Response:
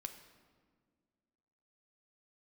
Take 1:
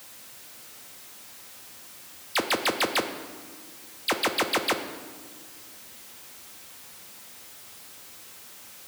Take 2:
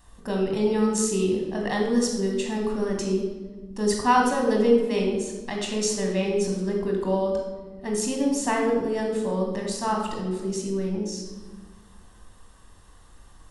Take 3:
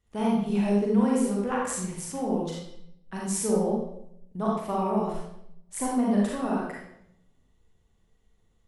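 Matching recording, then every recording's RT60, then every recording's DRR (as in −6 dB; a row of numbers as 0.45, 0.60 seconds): 1; 1.8, 1.4, 0.70 seconds; 6.0, 0.5, −4.5 decibels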